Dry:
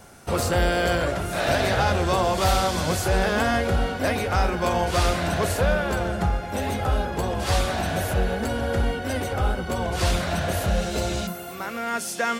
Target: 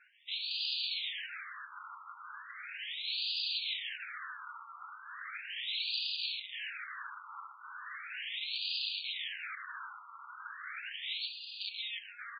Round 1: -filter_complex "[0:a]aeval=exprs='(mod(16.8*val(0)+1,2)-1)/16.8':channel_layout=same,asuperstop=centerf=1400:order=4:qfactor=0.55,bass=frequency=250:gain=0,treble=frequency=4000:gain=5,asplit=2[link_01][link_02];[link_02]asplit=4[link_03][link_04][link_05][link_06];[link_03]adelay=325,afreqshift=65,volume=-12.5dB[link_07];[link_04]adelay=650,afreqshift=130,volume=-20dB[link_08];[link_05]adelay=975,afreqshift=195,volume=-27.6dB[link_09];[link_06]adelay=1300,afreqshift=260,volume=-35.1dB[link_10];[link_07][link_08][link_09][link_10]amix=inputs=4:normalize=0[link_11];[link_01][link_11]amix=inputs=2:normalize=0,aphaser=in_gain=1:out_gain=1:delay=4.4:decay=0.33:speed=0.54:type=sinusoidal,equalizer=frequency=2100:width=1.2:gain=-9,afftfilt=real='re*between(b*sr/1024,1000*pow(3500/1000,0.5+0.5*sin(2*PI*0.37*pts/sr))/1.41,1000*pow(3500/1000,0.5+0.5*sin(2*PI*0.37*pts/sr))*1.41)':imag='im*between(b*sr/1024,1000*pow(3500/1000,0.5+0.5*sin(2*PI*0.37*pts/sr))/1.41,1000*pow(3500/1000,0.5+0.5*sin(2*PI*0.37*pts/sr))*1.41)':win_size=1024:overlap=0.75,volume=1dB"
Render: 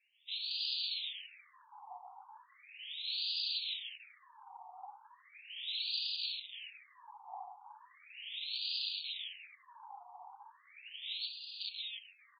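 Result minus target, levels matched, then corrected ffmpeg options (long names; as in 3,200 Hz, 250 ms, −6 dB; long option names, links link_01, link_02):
1,000 Hz band −3.0 dB
-filter_complex "[0:a]aeval=exprs='(mod(16.8*val(0)+1,2)-1)/16.8':channel_layout=same,asuperstop=centerf=670:order=4:qfactor=0.55,bass=frequency=250:gain=0,treble=frequency=4000:gain=5,asplit=2[link_01][link_02];[link_02]asplit=4[link_03][link_04][link_05][link_06];[link_03]adelay=325,afreqshift=65,volume=-12.5dB[link_07];[link_04]adelay=650,afreqshift=130,volume=-20dB[link_08];[link_05]adelay=975,afreqshift=195,volume=-27.6dB[link_09];[link_06]adelay=1300,afreqshift=260,volume=-35.1dB[link_10];[link_07][link_08][link_09][link_10]amix=inputs=4:normalize=0[link_11];[link_01][link_11]amix=inputs=2:normalize=0,aphaser=in_gain=1:out_gain=1:delay=4.4:decay=0.33:speed=0.54:type=sinusoidal,equalizer=frequency=2100:width=1.2:gain=-9,afftfilt=real='re*between(b*sr/1024,1000*pow(3500/1000,0.5+0.5*sin(2*PI*0.37*pts/sr))/1.41,1000*pow(3500/1000,0.5+0.5*sin(2*PI*0.37*pts/sr))*1.41)':imag='im*between(b*sr/1024,1000*pow(3500/1000,0.5+0.5*sin(2*PI*0.37*pts/sr))/1.41,1000*pow(3500/1000,0.5+0.5*sin(2*PI*0.37*pts/sr))*1.41)':win_size=1024:overlap=0.75,volume=1dB"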